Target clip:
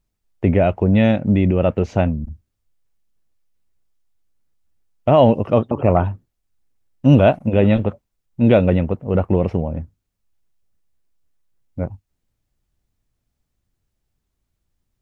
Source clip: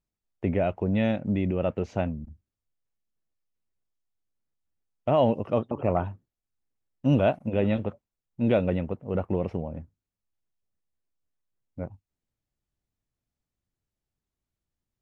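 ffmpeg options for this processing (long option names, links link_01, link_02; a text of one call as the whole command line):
ffmpeg -i in.wav -af "lowshelf=frequency=80:gain=8,volume=9dB" out.wav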